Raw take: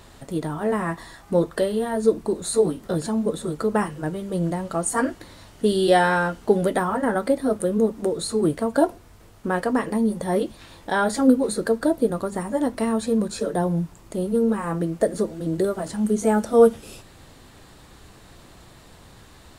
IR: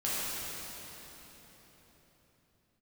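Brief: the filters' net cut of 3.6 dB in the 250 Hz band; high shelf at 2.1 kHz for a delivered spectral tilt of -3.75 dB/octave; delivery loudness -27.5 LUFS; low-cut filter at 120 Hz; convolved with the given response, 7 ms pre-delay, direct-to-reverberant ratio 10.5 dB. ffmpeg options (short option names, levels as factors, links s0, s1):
-filter_complex "[0:a]highpass=120,equalizer=f=250:t=o:g=-4,highshelf=f=2100:g=-6,asplit=2[s0][s1];[1:a]atrim=start_sample=2205,adelay=7[s2];[s1][s2]afir=irnorm=-1:irlink=0,volume=0.112[s3];[s0][s3]amix=inputs=2:normalize=0,volume=0.708"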